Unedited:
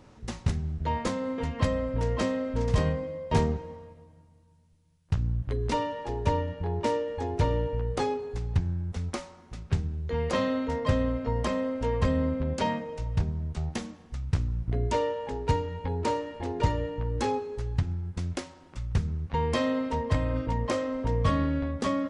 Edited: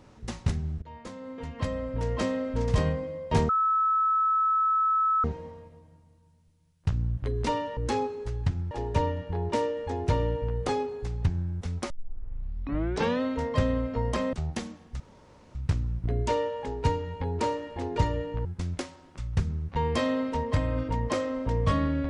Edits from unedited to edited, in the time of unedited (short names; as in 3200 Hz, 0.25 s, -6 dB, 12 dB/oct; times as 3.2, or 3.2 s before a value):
0.82–2.35 fade in, from -20.5 dB
3.49 add tone 1300 Hz -21 dBFS 1.75 s
9.21 tape start 1.32 s
11.64–13.52 cut
14.19 insert room tone 0.55 s
17.09–18.03 move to 6.02